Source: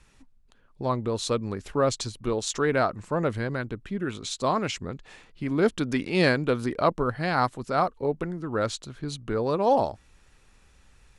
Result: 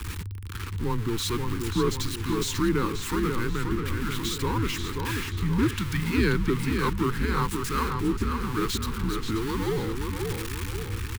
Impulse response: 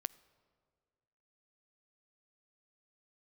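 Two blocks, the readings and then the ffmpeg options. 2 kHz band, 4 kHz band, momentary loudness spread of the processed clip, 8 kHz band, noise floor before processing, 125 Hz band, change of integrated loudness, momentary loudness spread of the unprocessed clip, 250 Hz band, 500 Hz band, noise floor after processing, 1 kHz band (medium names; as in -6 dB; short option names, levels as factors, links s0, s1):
-0.5 dB, +2.5 dB, 6 LU, +2.0 dB, -59 dBFS, +4.5 dB, -1.0 dB, 10 LU, +2.0 dB, -5.0 dB, -35 dBFS, -4.0 dB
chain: -filter_complex "[0:a]aeval=exprs='val(0)+0.5*0.0596*sgn(val(0))':c=same,equalizer=f=6200:t=o:w=1.1:g=-4,acrossover=split=1000[s0][s1];[s0]aeval=exprs='val(0)*(1-0.5/2+0.5/2*cos(2*PI*1.1*n/s))':c=same[s2];[s1]aeval=exprs='val(0)*(1-0.5/2-0.5/2*cos(2*PI*1.1*n/s))':c=same[s3];[s2][s3]amix=inputs=2:normalize=0,afreqshift=-110,asuperstop=centerf=640:order=4:qfactor=1.2,asplit=2[s4][s5];[s5]adelay=533,lowpass=f=4200:p=1,volume=0.596,asplit=2[s6][s7];[s7]adelay=533,lowpass=f=4200:p=1,volume=0.52,asplit=2[s8][s9];[s9]adelay=533,lowpass=f=4200:p=1,volume=0.52,asplit=2[s10][s11];[s11]adelay=533,lowpass=f=4200:p=1,volume=0.52,asplit=2[s12][s13];[s13]adelay=533,lowpass=f=4200:p=1,volume=0.52,asplit=2[s14][s15];[s15]adelay=533,lowpass=f=4200:p=1,volume=0.52,asplit=2[s16][s17];[s17]adelay=533,lowpass=f=4200:p=1,volume=0.52[s18];[s4][s6][s8][s10][s12][s14][s16][s18]amix=inputs=8:normalize=0,volume=0.891"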